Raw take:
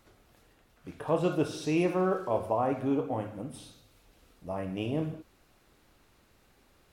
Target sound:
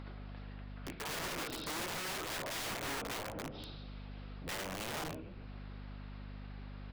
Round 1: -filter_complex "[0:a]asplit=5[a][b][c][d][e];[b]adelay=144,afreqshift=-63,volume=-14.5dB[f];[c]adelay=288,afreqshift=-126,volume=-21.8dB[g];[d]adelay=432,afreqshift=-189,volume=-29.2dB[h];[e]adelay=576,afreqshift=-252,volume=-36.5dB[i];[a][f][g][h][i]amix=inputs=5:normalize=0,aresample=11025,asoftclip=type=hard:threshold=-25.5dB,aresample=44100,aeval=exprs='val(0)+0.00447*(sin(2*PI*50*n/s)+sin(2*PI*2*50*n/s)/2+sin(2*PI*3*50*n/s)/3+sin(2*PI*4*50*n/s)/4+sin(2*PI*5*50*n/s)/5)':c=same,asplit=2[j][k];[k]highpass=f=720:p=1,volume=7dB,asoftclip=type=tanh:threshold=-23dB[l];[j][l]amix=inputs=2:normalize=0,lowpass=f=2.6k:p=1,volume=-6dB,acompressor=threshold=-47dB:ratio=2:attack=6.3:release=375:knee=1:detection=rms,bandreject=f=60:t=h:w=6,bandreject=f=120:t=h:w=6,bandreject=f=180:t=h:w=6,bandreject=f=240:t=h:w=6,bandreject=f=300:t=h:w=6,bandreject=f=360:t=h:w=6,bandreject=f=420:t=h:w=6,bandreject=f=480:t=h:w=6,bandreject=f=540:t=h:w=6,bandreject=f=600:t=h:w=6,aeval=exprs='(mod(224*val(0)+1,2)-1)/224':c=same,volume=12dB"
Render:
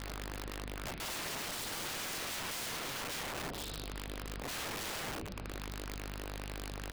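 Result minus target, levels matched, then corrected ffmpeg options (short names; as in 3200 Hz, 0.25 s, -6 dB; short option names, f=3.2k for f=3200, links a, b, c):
compressor: peak gain reduction -5.5 dB
-filter_complex "[0:a]asplit=5[a][b][c][d][e];[b]adelay=144,afreqshift=-63,volume=-14.5dB[f];[c]adelay=288,afreqshift=-126,volume=-21.8dB[g];[d]adelay=432,afreqshift=-189,volume=-29.2dB[h];[e]adelay=576,afreqshift=-252,volume=-36.5dB[i];[a][f][g][h][i]amix=inputs=5:normalize=0,aresample=11025,asoftclip=type=hard:threshold=-25.5dB,aresample=44100,aeval=exprs='val(0)+0.00447*(sin(2*PI*50*n/s)+sin(2*PI*2*50*n/s)/2+sin(2*PI*3*50*n/s)/3+sin(2*PI*4*50*n/s)/4+sin(2*PI*5*50*n/s)/5)':c=same,asplit=2[j][k];[k]highpass=f=720:p=1,volume=7dB,asoftclip=type=tanh:threshold=-23dB[l];[j][l]amix=inputs=2:normalize=0,lowpass=f=2.6k:p=1,volume=-6dB,acompressor=threshold=-58dB:ratio=2:attack=6.3:release=375:knee=1:detection=rms,bandreject=f=60:t=h:w=6,bandreject=f=120:t=h:w=6,bandreject=f=180:t=h:w=6,bandreject=f=240:t=h:w=6,bandreject=f=300:t=h:w=6,bandreject=f=360:t=h:w=6,bandreject=f=420:t=h:w=6,bandreject=f=480:t=h:w=6,bandreject=f=540:t=h:w=6,bandreject=f=600:t=h:w=6,aeval=exprs='(mod(224*val(0)+1,2)-1)/224':c=same,volume=12dB"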